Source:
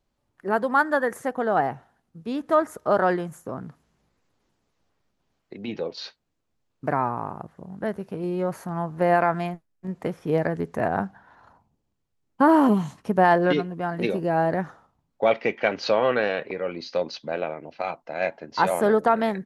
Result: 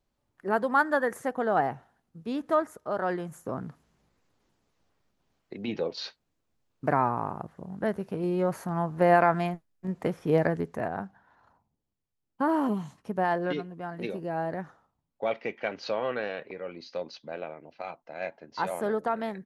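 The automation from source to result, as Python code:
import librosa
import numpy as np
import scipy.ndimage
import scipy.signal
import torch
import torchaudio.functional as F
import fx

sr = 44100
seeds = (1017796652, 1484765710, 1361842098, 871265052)

y = fx.gain(x, sr, db=fx.line((2.45, -3.0), (2.91, -10.5), (3.5, -0.5), (10.49, -0.5), (10.95, -9.0)))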